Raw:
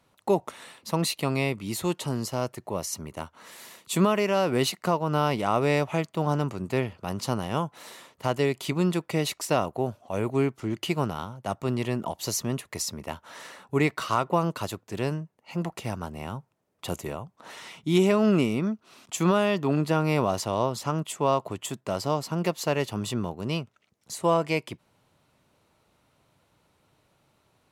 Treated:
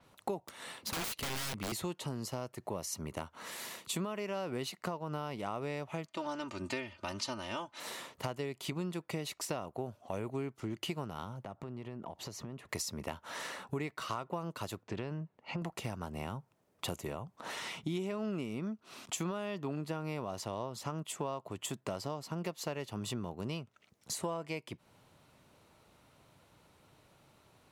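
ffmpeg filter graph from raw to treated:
-filter_complex "[0:a]asettb=1/sr,asplit=3[a][b][c];[a]atrim=end=0.474[d];[b]atrim=start=0.47:end=1.72,asetpts=PTS-STARTPTS,afade=t=in:d=0.004:c=qsin,afade=t=out:st=1.246:d=0.004:c=qsin,bandreject=f=2.5k:w=20,aeval=exprs='(mod(25.1*val(0)+1,2)-1)/25.1':c=same[e];[c]atrim=start=1.716[f];[d][e]acrossfade=d=0.004:c1=hsin:c2=qsin[g];[g][f]acrossfade=d=0.004:c1=qsin:c2=hsin,asettb=1/sr,asplit=3[h][i][j];[h]atrim=end=6.084[k];[i]atrim=start=6.08:end=7.8,asetpts=PTS-STARTPTS,afade=t=in:d=0.004:c=qsin,afade=t=out:st=1.716:d=0.004:c=qsin,lowpass=5.8k,tiltshelf=f=1.3k:g=-6,aecho=1:1:3.3:0.89,atrim=end_sample=75852[l];[j]atrim=start=7.796[m];[k][l]acrossfade=d=0.004:c1=hsin:c2=qsin[n];[n][m]acrossfade=d=0.004:c1=qsin:c2=hsin,asettb=1/sr,asplit=3[o][p][q];[o]atrim=end=11.434[r];[p]atrim=start=11.43:end=12.69,asetpts=PTS-STARTPTS,afade=t=in:d=0.004:c=qsin,afade=t=out:st=1.256:d=0.004:c=qsin,lowpass=f=1.6k:p=1,acompressor=threshold=-43dB:ratio=6:attack=3.2:release=140:knee=1:detection=peak[s];[q]atrim=start=12.686[t];[r][s]acrossfade=d=0.004:c1=hsin:c2=qsin[u];[u][t]acrossfade=d=0.004:c1=qsin:c2=hsin,asettb=1/sr,asplit=3[v][w][x];[v]atrim=end=14.834[y];[w]atrim=start=14.83:end=15.62,asetpts=PTS-STARTPTS,afade=t=in:d=0.004:c=qsin,afade=t=out:st=0.786:d=0.004:c=qsin,lowpass=3.7k,acompressor=threshold=-29dB:ratio=2.5:attack=3.2:release=140:knee=1:detection=peak[z];[x]atrim=start=15.616[aa];[y][z]acrossfade=d=0.004:c1=hsin:c2=qsin[ab];[ab][aa]acrossfade=d=0.004:c1=qsin:c2=hsin,acompressor=threshold=-38dB:ratio=6,adynamicequalizer=threshold=0.00141:dfrequency=6800:dqfactor=0.7:tfrequency=6800:tqfactor=0.7:attack=5:release=100:ratio=0.375:range=1.5:mode=cutabove:tftype=highshelf,volume=2.5dB"

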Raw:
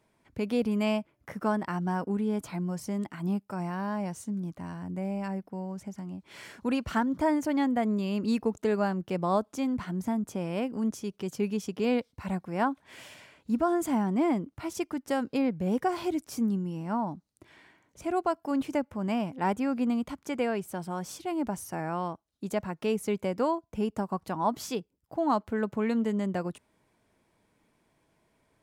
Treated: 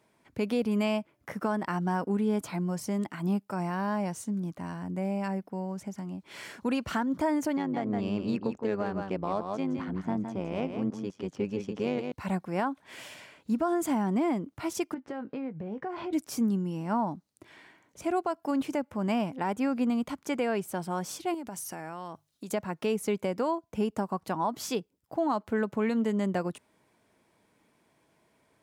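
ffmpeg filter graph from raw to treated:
-filter_complex "[0:a]asettb=1/sr,asplit=3[a][b][c];[a]atrim=end=7.574[d];[b]atrim=start=7.57:end=12.12,asetpts=PTS-STARTPTS,afade=t=in:d=0.004:c=qsin,afade=t=out:st=4.546:d=0.004:c=qsin,adynamicsmooth=sensitivity=4:basefreq=3.2k,tremolo=f=100:d=0.75,aecho=1:1:164:0.422,atrim=end_sample=200655[e];[c]atrim=start=12.116[f];[d][e]acrossfade=d=0.004:c1=hsin:c2=qsin[g];[g][f]acrossfade=d=0.004:c1=qsin:c2=hsin,asettb=1/sr,asplit=3[h][i][j];[h]atrim=end=14.944[k];[i]atrim=start=14.94:end=16.13,asetpts=PTS-STARTPTS,afade=t=in:d=0.004:c=qsin,afade=t=out:st=1.186:d=0.004:c=qsin,lowpass=2.3k,acompressor=threshold=-36dB:ratio=5:attack=3.2:release=140:knee=1:detection=peak,asplit=2[l][m];[m]adelay=19,volume=-12dB[n];[l][n]amix=inputs=2:normalize=0,atrim=end_sample=52479[o];[j]atrim=start=16.126[p];[k][o]acrossfade=d=0.004:c1=hsin:c2=qsin[q];[q][p]acrossfade=d=0.004:c1=qsin:c2=hsin,asettb=1/sr,asplit=3[r][s][t];[r]atrim=end=21.344[u];[s]atrim=start=21.34:end=22.53,asetpts=PTS-STARTPTS,afade=t=in:d=0.004:c=qsin,afade=t=out:st=1.186:d=0.004:c=qsin,highshelf=f=2.1k:g=8,bandreject=f=50:t=h:w=6,bandreject=f=100:t=h:w=6,bandreject=f=150:t=h:w=6,acompressor=threshold=-37dB:ratio=12:attack=3.2:release=140:knee=1:detection=peak[v];[t]atrim=start=22.526[w];[u][v]acrossfade=d=0.004:c1=hsin:c2=qsin[x];[x][w]acrossfade=d=0.004:c1=qsin:c2=hsin,highpass=f=140:p=1,alimiter=limit=-22.5dB:level=0:latency=1:release=186,volume=3dB"

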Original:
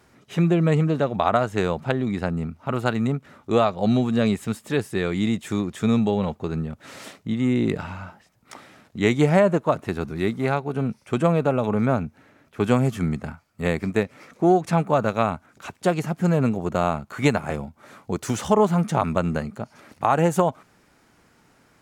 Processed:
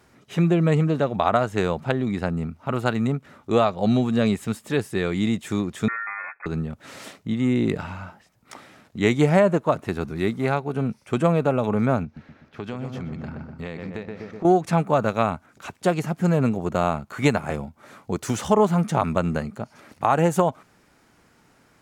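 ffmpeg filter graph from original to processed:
-filter_complex "[0:a]asettb=1/sr,asplit=3[a][b][c];[a]atrim=end=5.884[d];[b]atrim=start=5.88:end=6.46,asetpts=PTS-STARTPTS,afade=t=in:d=0.004:c=qsin,afade=t=out:st=0.576:d=0.004:c=qsin,acompressor=threshold=-37dB:ratio=1.5:attack=3.2:release=140:knee=1:detection=peak,aeval=exprs='val(0)*sin(2*PI*990*n/s)':c=same,lowpass=f=2.2k:t=q:w=0.5098,lowpass=f=2.2k:t=q:w=0.6013,lowpass=f=2.2k:t=q:w=0.9,lowpass=f=2.2k:t=q:w=2.563,afreqshift=-2600[e];[c]atrim=start=6.456[f];[d][e]acrossfade=d=0.004:c1=hsin:c2=qsin[g];[g][f]acrossfade=d=0.004:c1=qsin:c2=hsin,asettb=1/sr,asplit=3[h][i][j];[h]atrim=end=12.044[k];[i]atrim=start=12.04:end=14.45,asetpts=PTS-STARTPTS,afade=t=in:d=0.004:c=qsin,afade=t=out:st=2.406:d=0.004:c=qsin,asplit=2[l][m];[m]adelay=124,lowpass=f=2k:p=1,volume=-7dB,asplit=2[n][o];[o]adelay=124,lowpass=f=2k:p=1,volume=0.53,asplit=2[p][q];[q]adelay=124,lowpass=f=2k:p=1,volume=0.53,asplit=2[r][s];[s]adelay=124,lowpass=f=2k:p=1,volume=0.53,asplit=2[t][u];[u]adelay=124,lowpass=f=2k:p=1,volume=0.53,asplit=2[v][w];[w]adelay=124,lowpass=f=2k:p=1,volume=0.53[x];[l][n][p][r][t][v][x]amix=inputs=7:normalize=0,atrim=end_sample=106281,acompressor=threshold=-30dB:ratio=4:attack=3.2:release=140:knee=1:detection=peak,highshelf=f=6.6k:t=q:w=1.5:g=-10.5[y];[j]atrim=start=14.446[z];[k][y]acrossfade=d=0.004:c1=hsin:c2=qsin[aa];[aa][z]acrossfade=d=0.004:c1=qsin:c2=hsin"

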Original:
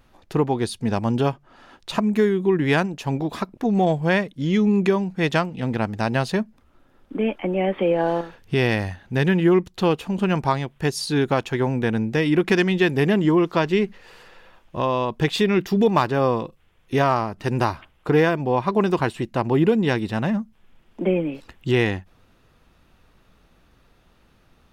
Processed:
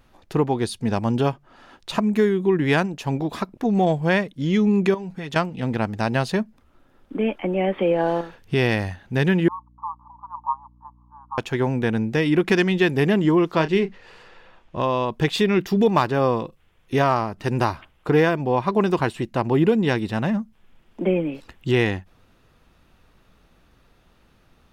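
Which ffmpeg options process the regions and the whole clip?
-filter_complex "[0:a]asettb=1/sr,asplit=3[a][b][c];[a]atrim=end=4.944[d];[b]atrim=start=4.94:end=5.36,asetpts=PTS-STARTPTS,afade=t=in:d=0.004:c=qsin,afade=t=out:st=0.416:d=0.004:c=qsin,aecho=1:1:7.3:0.48,atrim=end_sample=18522,acompressor=threshold=-27dB:ratio=12:attack=3.2:release=140:knee=1:detection=peak[e];[c]atrim=start=5.356[f];[d][e]acrossfade=d=0.004:c1=hsin:c2=qsin[g];[g][f]acrossfade=d=0.004:c1=qsin:c2=hsin,asettb=1/sr,asplit=3[h][i][j];[h]atrim=end=9.484[k];[i]atrim=start=9.48:end=11.38,asetpts=PTS-STARTPTS,afade=t=in:d=0.004:c=qsin,afade=t=out:st=1.896:d=0.004:c=qsin,asuperpass=centerf=1000:order=8:qfactor=3.3,aeval=exprs='val(0)+0.00224*(sin(2*PI*60*n/s)+sin(2*PI*2*60*n/s)/2+sin(2*PI*3*60*n/s)/3+sin(2*PI*4*60*n/s)/4+sin(2*PI*5*60*n/s)/5)':c=same[l];[j]atrim=start=11.376[m];[k][l]acrossfade=d=0.004:c1=hsin:c2=qsin[n];[n][m]acrossfade=d=0.004:c1=qsin:c2=hsin,asettb=1/sr,asplit=3[o][p][q];[o]atrim=end=13.554[r];[p]atrim=start=13.55:end=14.82,asetpts=PTS-STARTPTS,afade=t=in:d=0.004:c=qsin,afade=t=out:st=1.266:d=0.004:c=qsin,adynamicsmooth=sensitivity=5:basefreq=7.7k,asplit=2[s][t];[t]adelay=31,volume=-12dB[u];[s][u]amix=inputs=2:normalize=0,atrim=end_sample=56007[v];[q]atrim=start=14.816[w];[r][v]acrossfade=d=0.004:c1=hsin:c2=qsin[x];[x][w]acrossfade=d=0.004:c1=qsin:c2=hsin"

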